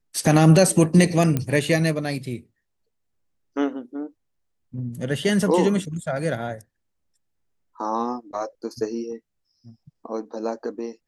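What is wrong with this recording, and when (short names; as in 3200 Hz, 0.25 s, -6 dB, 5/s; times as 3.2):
1.37 pop -10 dBFS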